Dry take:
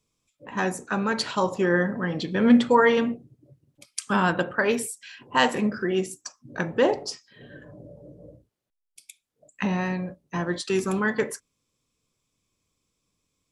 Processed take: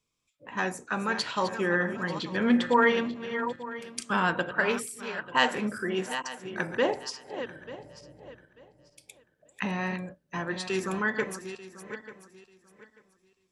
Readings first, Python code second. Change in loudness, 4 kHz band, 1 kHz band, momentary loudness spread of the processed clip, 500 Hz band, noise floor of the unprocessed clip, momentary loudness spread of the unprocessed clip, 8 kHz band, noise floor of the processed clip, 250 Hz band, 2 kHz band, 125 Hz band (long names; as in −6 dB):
−4.5 dB, −1.5 dB, −2.5 dB, 17 LU, −5.0 dB, −79 dBFS, 16 LU, −5.0 dB, −73 dBFS, −6.0 dB, −1.0 dB, −6.5 dB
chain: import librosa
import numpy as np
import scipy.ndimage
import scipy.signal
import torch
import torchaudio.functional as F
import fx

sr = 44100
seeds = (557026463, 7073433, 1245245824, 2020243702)

y = fx.reverse_delay_fb(x, sr, ms=445, feedback_pct=45, wet_db=-10.0)
y = fx.peak_eq(y, sr, hz=2100.0, db=6.0, octaves=2.8)
y = y * 10.0 ** (-7.0 / 20.0)